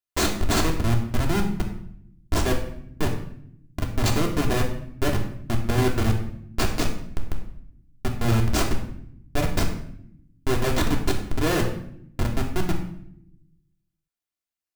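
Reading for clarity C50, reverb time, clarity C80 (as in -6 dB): 7.5 dB, 0.70 s, 10.0 dB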